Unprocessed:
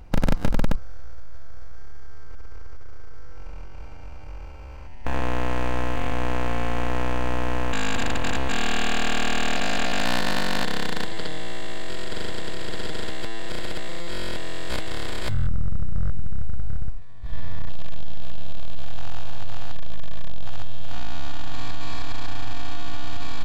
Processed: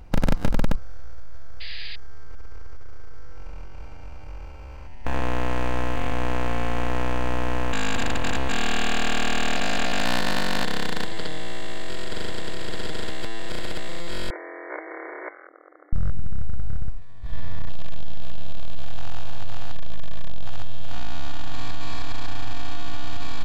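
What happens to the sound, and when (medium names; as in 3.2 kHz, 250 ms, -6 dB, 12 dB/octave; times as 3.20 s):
1.60–1.96 s: painted sound noise 1.6–5 kHz -38 dBFS
14.30–15.93 s: brick-wall FIR band-pass 300–2300 Hz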